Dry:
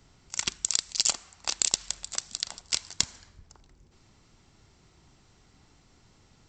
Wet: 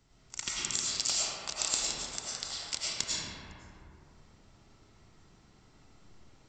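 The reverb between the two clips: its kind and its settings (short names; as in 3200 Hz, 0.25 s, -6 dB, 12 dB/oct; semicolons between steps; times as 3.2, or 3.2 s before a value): digital reverb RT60 2.7 s, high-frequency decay 0.4×, pre-delay 65 ms, DRR -7.5 dB; gain -8.5 dB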